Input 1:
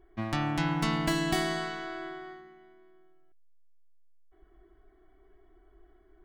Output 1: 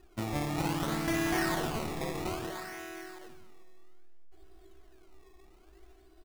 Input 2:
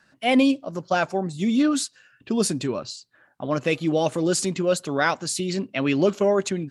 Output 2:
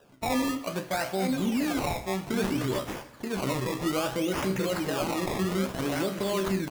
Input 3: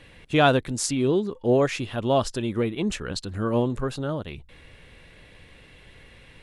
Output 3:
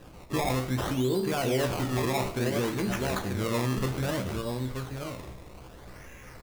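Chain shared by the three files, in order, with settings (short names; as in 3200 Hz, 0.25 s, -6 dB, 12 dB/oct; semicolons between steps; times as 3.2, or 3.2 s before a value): in parallel at +2.5 dB: compressor, threshold -31 dBFS; on the sum: resonator 64 Hz, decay 0.27 s, harmonics all, mix 80%; on a send: echo 0.93 s -6.5 dB; on the sum: limiter -20 dBFS; decimation with a swept rate 20×, swing 100% 0.61 Hz; two-slope reverb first 0.78 s, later 2.8 s, from -18 dB, DRR 9 dB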